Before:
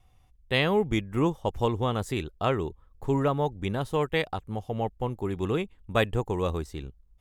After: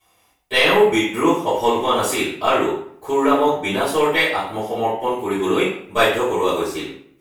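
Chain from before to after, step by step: high-pass 350 Hz 12 dB/octave; treble shelf 5.3 kHz +9 dB; in parallel at +2.5 dB: level held to a coarse grid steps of 21 dB; on the sum: saturation -9 dBFS, distortion -24 dB; reverberation RT60 0.60 s, pre-delay 3 ms, DRR -14.5 dB; trim -7 dB

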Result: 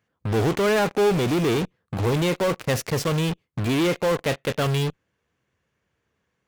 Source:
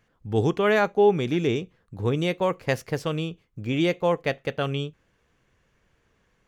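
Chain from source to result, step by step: high-pass 65 Hz 24 dB/octave; in parallel at -3 dB: fuzz box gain 46 dB, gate -42 dBFS; on the sum: trim -7 dB

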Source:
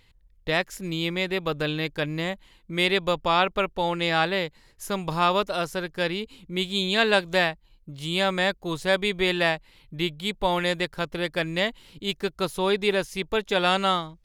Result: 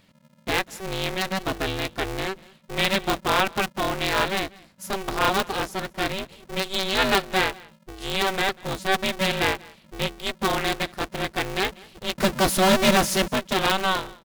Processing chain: 12.18–13.28 s: power-law waveshaper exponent 0.5; on a send: delay 192 ms -23.5 dB; on the sum: polarity switched at an audio rate 190 Hz

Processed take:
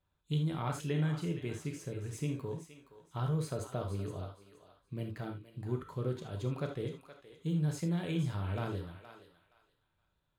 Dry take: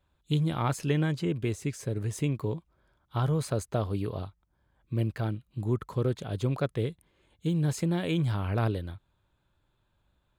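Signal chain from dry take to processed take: on a send: thinning echo 470 ms, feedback 23%, high-pass 840 Hz, level -10 dB; on the sum: gated-style reverb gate 100 ms flat, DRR 3 dB; trim -9 dB

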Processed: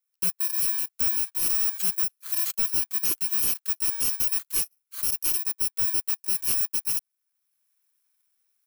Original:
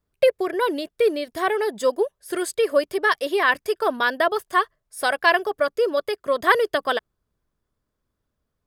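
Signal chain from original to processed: bit-reversed sample order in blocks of 64 samples; high-pass 1.2 kHz 24 dB/octave; treble shelf 9.3 kHz +8.5 dB; level rider gain up to 7 dB; saturation -19.5 dBFS, distortion -5 dB; trim -2 dB

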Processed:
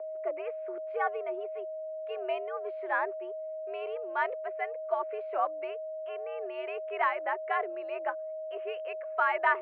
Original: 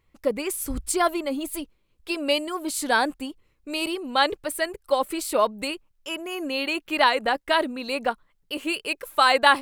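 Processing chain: whistle 530 Hz -27 dBFS; mistuned SSB +99 Hz 290–2200 Hz; trim -8.5 dB

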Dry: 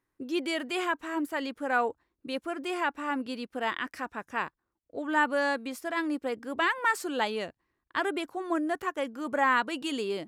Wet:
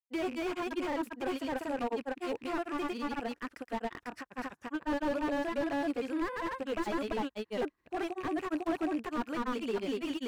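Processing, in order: rattle on loud lows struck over -51 dBFS, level -32 dBFS; granulator 100 ms, spray 527 ms; slew-rate limiter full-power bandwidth 22 Hz

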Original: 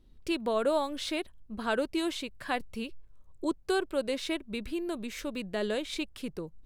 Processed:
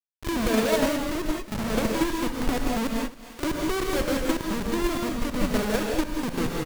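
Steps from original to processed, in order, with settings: median filter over 41 samples; Schmitt trigger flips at -40 dBFS; on a send: feedback delay 270 ms, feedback 53%, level -21 dB; on the sum: gated-style reverb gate 220 ms rising, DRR 0 dB; in parallel at -2 dB: level held to a coarse grid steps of 16 dB; on the sum: pre-echo 41 ms -13 dB; gain riding 2 s; tape noise reduction on one side only encoder only; trim +6 dB

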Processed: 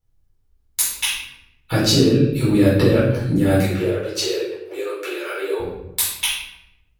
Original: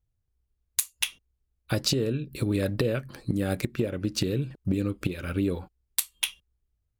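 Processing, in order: 3.58–5.60 s: steep high-pass 360 Hz 96 dB/octave; simulated room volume 260 m³, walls mixed, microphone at 4.2 m; trim -1.5 dB

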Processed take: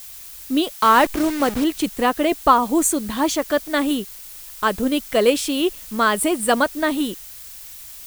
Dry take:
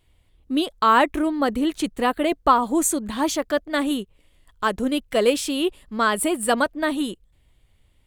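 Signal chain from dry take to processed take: 0.72–1.64 s: send-on-delta sampling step -26 dBFS; added noise blue -41 dBFS; trim +2.5 dB

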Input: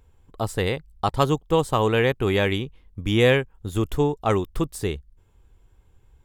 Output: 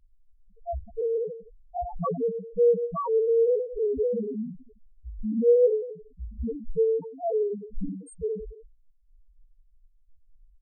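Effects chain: Schroeder reverb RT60 0.49 s, combs from 33 ms, DRR 8 dB; granular stretch 1.7×, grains 21 ms; loudest bins only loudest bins 1; trim +5 dB

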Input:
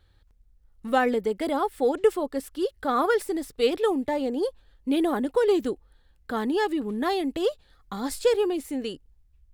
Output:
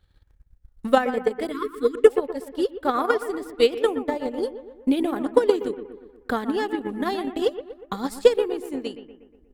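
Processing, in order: bucket-brigade echo 120 ms, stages 2048, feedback 55%, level -7 dB; spectral selection erased 1.52–2.06 s, 490–1000 Hz; transient shaper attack +11 dB, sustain -6 dB; trim -3 dB

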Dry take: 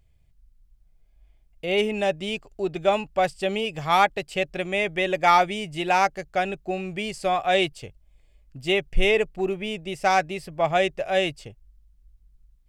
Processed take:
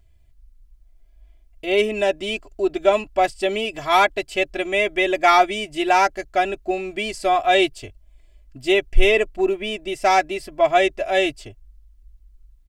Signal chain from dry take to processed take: comb 3 ms, depth 92%; trim +1.5 dB

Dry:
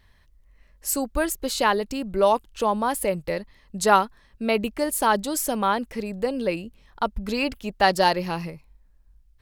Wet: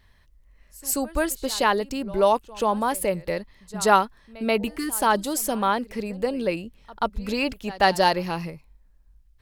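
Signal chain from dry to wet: spectral replace 4.63–4.93 s, 460–940 Hz both; pre-echo 133 ms -20.5 dB

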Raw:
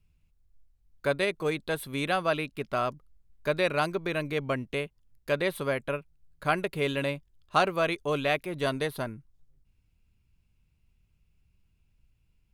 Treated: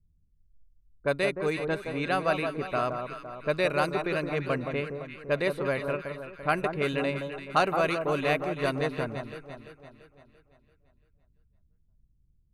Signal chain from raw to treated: band-stop 3.3 kHz, Q 6.5; level-controlled noise filter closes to 320 Hz, open at -23 dBFS; echo whose repeats swap between lows and highs 170 ms, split 1.3 kHz, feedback 68%, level -5.5 dB

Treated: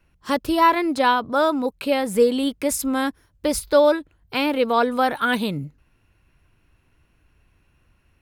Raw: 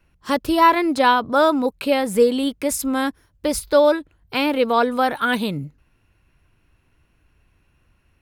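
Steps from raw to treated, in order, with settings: gain riding within 3 dB 2 s; trim -2 dB

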